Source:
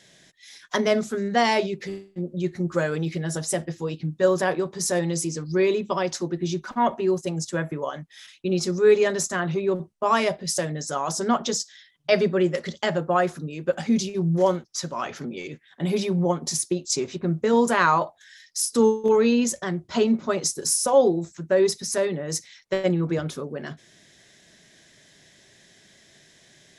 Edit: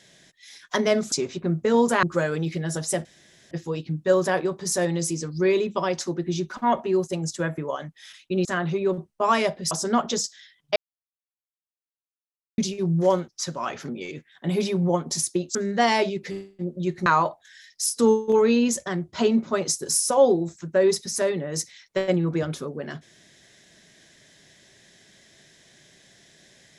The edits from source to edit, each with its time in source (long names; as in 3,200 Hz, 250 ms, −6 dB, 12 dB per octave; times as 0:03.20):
0:01.12–0:02.63: swap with 0:16.91–0:17.82
0:03.65: splice in room tone 0.46 s
0:08.59–0:09.27: remove
0:10.53–0:11.07: remove
0:12.12–0:13.94: silence